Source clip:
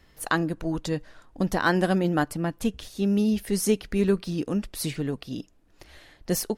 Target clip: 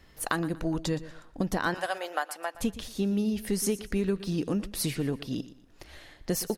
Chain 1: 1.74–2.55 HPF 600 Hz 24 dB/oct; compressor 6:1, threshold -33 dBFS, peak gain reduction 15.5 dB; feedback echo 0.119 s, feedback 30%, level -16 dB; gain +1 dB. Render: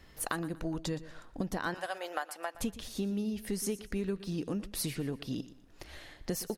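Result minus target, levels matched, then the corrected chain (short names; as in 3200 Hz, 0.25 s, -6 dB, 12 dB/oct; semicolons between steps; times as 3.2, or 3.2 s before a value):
compressor: peak gain reduction +6 dB
1.74–2.55 HPF 600 Hz 24 dB/oct; compressor 6:1, threshold -25.5 dBFS, peak gain reduction 9 dB; feedback echo 0.119 s, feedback 30%, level -16 dB; gain +1 dB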